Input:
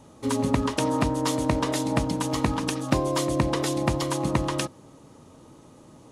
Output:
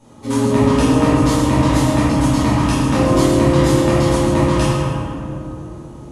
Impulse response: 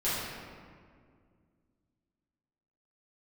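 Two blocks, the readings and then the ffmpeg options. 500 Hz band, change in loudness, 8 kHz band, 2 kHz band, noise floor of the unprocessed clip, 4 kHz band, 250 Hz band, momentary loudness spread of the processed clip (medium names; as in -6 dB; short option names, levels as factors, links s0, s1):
+10.5 dB, +10.5 dB, +6.0 dB, +8.5 dB, -51 dBFS, +6.5 dB, +11.5 dB, 14 LU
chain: -filter_complex "[1:a]atrim=start_sample=2205,asetrate=26460,aresample=44100[s0];[0:a][s0]afir=irnorm=-1:irlink=0,volume=0.631"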